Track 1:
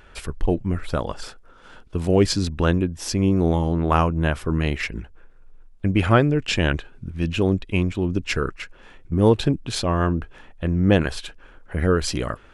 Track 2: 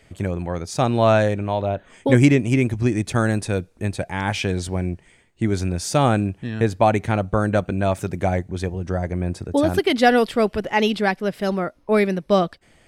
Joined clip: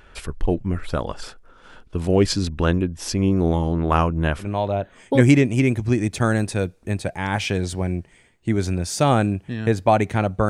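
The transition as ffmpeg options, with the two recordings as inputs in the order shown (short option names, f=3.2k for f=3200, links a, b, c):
-filter_complex "[0:a]apad=whole_dur=10.49,atrim=end=10.49,atrim=end=4.48,asetpts=PTS-STARTPTS[a];[1:a]atrim=start=1.32:end=7.43,asetpts=PTS-STARTPTS[b];[a][b]acrossfade=d=0.1:c1=tri:c2=tri"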